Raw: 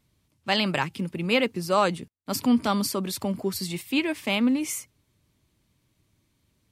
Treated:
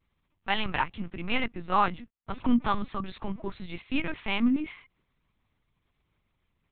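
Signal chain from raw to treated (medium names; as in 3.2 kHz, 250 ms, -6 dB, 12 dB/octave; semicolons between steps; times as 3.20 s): graphic EQ 125/250/500/1000/2000 Hz -5/+6/-8/+8/+4 dB; LPC vocoder at 8 kHz pitch kept; vibrato 0.4 Hz 15 cents; trim -5.5 dB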